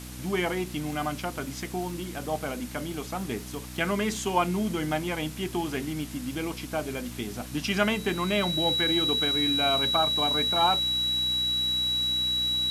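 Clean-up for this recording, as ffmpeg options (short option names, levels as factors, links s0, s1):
-af "adeclick=t=4,bandreject=f=62.1:t=h:w=4,bandreject=f=124.2:t=h:w=4,bandreject=f=186.3:t=h:w=4,bandreject=f=248.4:t=h:w=4,bandreject=f=310.5:t=h:w=4,bandreject=f=3900:w=30,afwtdn=0.0063"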